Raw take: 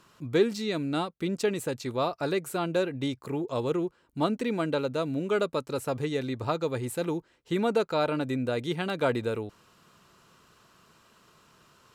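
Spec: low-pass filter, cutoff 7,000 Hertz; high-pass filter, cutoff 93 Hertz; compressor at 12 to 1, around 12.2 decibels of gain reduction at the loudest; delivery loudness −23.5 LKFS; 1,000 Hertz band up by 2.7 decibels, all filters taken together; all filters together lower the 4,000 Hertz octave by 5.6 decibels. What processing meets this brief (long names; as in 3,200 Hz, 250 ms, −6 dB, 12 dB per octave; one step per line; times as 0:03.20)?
high-pass filter 93 Hz
low-pass filter 7,000 Hz
parametric band 1,000 Hz +4 dB
parametric band 4,000 Hz −6.5 dB
downward compressor 12 to 1, threshold −31 dBFS
level +13 dB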